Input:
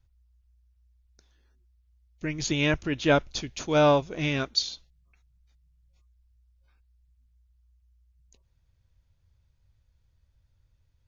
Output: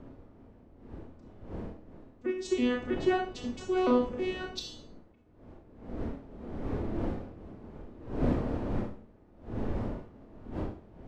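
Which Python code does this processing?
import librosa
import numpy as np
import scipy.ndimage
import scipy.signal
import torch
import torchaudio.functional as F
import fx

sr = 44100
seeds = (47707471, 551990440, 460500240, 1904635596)

p1 = fx.vocoder_arp(x, sr, chord='bare fifth', root=59, every_ms=322)
p2 = fx.dmg_wind(p1, sr, seeds[0], corner_hz=270.0, level_db=-35.0)
p3 = fx.peak_eq(p2, sr, hz=150.0, db=-7.0, octaves=0.66)
p4 = 10.0 ** (-23.0 / 20.0) * np.tanh(p3 / 10.0 ** (-23.0 / 20.0))
p5 = p3 + (p4 * 10.0 ** (-9.0 / 20.0))
p6 = fx.rev_schroeder(p5, sr, rt60_s=0.42, comb_ms=26, drr_db=2.0)
y = p6 * 10.0 ** (-5.5 / 20.0)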